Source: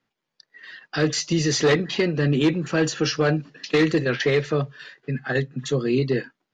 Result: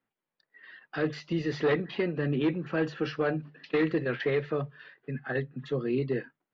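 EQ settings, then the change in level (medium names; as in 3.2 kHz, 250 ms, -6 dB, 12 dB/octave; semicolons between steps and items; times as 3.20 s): distance through air 390 m; bass shelf 270 Hz -4.5 dB; hum notches 50/100/150 Hz; -4.5 dB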